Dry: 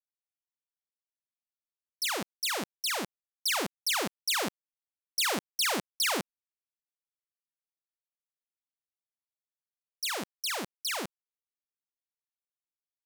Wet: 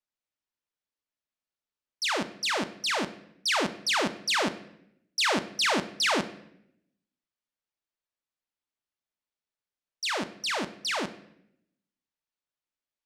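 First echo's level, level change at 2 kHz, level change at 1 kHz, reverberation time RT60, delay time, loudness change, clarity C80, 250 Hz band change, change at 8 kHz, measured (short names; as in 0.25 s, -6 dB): none, +4.5 dB, +5.0 dB, 0.75 s, none, +2.5 dB, 17.0 dB, +6.0 dB, -2.0 dB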